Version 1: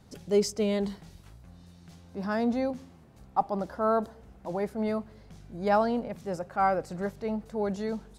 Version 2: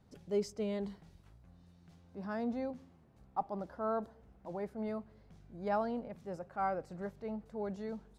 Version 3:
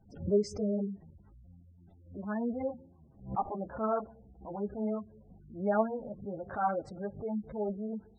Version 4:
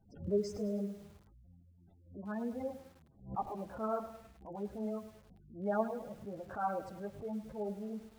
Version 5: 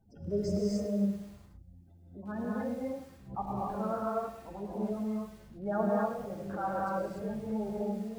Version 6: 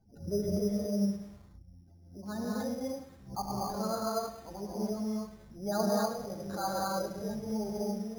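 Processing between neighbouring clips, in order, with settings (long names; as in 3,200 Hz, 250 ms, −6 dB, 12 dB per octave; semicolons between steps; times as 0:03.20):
high-shelf EQ 3,500 Hz −8 dB; level −9 dB
multi-voice chorus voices 4, 1.1 Hz, delay 12 ms, depth 3 ms; gate on every frequency bin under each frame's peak −20 dB strong; background raised ahead of every attack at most 140 dB per second; level +6.5 dB
feedback echo at a low word length 104 ms, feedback 55%, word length 8 bits, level −12 dB; level −5 dB
reverb whose tail is shaped and stops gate 310 ms rising, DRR −4.5 dB
bad sample-rate conversion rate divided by 8×, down filtered, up hold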